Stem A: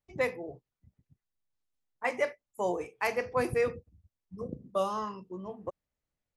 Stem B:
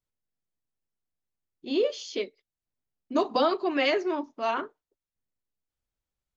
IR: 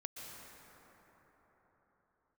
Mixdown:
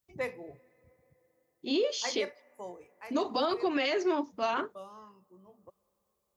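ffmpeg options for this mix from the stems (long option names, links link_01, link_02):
-filter_complex "[0:a]volume=-5.5dB,afade=type=out:start_time=2.24:duration=0.53:silence=0.266073,asplit=2[link_01][link_02];[link_02]volume=-19.5dB[link_03];[1:a]crystalizer=i=1.5:c=0,volume=1dB[link_04];[2:a]atrim=start_sample=2205[link_05];[link_03][link_05]afir=irnorm=-1:irlink=0[link_06];[link_01][link_04][link_06]amix=inputs=3:normalize=0,highpass=48,alimiter=limit=-20.5dB:level=0:latency=1:release=88"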